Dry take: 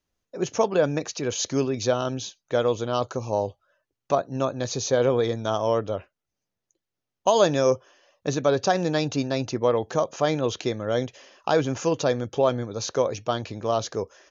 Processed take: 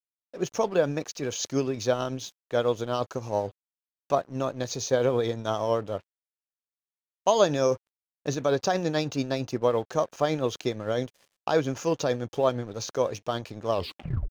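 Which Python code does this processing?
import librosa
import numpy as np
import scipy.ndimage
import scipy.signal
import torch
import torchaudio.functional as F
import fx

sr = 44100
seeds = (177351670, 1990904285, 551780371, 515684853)

y = fx.tape_stop_end(x, sr, length_s=0.6)
y = y * (1.0 - 0.33 / 2.0 + 0.33 / 2.0 * np.cos(2.0 * np.pi * 8.9 * (np.arange(len(y)) / sr)))
y = np.sign(y) * np.maximum(np.abs(y) - 10.0 ** (-47.5 / 20.0), 0.0)
y = y * librosa.db_to_amplitude(-1.0)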